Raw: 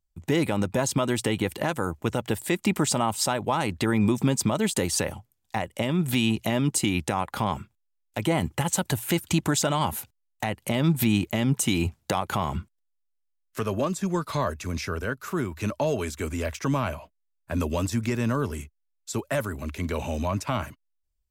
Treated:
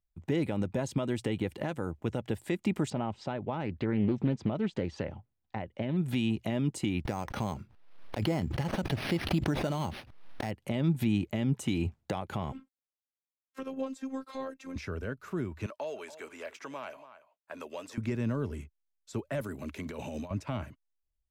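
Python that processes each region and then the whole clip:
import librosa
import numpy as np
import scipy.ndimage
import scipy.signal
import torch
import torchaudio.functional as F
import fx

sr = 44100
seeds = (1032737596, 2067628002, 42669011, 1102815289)

y = fx.chain(x, sr, fx.air_absorb(metres=190.0),
    fx.doppler_dist(depth_ms=0.32), at=(2.9, 5.97))
y = fx.chain(y, sr, fx.resample_bad(factor=6, down='none', up='hold'),
    fx.pre_swell(db_per_s=60.0), at=(7.05, 10.51))
y = fx.chain(y, sr, fx.highpass(hz=180.0, slope=24),
    fx.robotise(hz=266.0), at=(12.52, 14.76))
y = fx.chain(y, sr, fx.highpass(hz=610.0, slope=12),
    fx.echo_single(ms=284, db=-17.0), at=(15.66, 17.98))
y = fx.chain(y, sr, fx.highpass(hz=130.0, slope=12),
    fx.high_shelf(hz=4700.0, db=8.5),
    fx.over_compress(threshold_db=-31.0, ratio=-0.5), at=(19.41, 20.31))
y = fx.lowpass(y, sr, hz=1900.0, slope=6)
y = fx.dynamic_eq(y, sr, hz=1100.0, q=1.2, threshold_db=-42.0, ratio=4.0, max_db=-7)
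y = y * librosa.db_to_amplitude(-5.0)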